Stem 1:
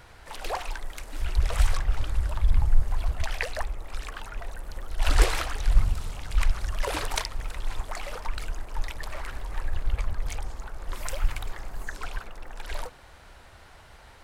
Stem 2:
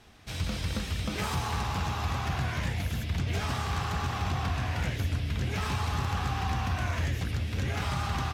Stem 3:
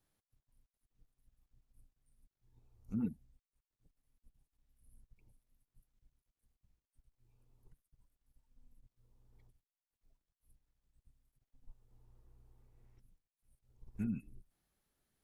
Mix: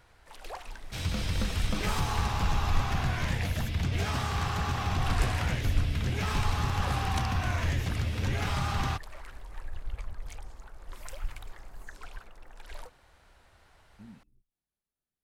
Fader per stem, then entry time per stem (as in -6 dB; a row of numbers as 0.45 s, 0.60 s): -10.0 dB, +0.5 dB, -12.5 dB; 0.00 s, 0.65 s, 0.00 s